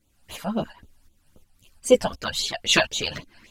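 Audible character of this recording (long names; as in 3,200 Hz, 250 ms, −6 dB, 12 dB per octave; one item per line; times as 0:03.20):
phaser sweep stages 12, 3.8 Hz, lowest notch 350–1,800 Hz
tremolo saw up 2.8 Hz, depth 65%
a shimmering, thickened sound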